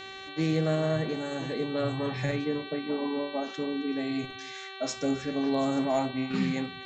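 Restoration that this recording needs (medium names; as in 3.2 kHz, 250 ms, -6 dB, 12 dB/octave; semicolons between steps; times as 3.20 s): clip repair -17.5 dBFS; de-hum 385.4 Hz, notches 11; inverse comb 267 ms -22 dB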